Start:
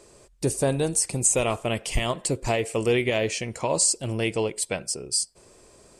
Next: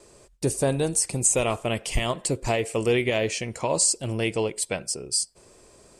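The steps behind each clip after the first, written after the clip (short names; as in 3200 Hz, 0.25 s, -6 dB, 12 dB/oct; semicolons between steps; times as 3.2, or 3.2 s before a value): gate with hold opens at -49 dBFS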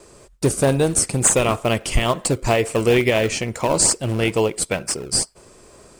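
bell 1300 Hz +4 dB 0.77 oct; in parallel at -10.5 dB: decimation with a swept rate 28×, swing 160% 2.2 Hz; on the sum: gain +4.5 dB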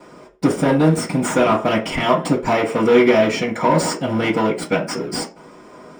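median filter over 3 samples; soft clip -16 dBFS, distortion -11 dB; reverb RT60 0.35 s, pre-delay 3 ms, DRR -9 dB; gain -5.5 dB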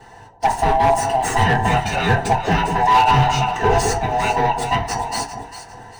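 band-swap scrambler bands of 500 Hz; overloaded stage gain 9 dB; on a send: echo with dull and thin repeats by turns 0.2 s, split 980 Hz, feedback 57%, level -6.5 dB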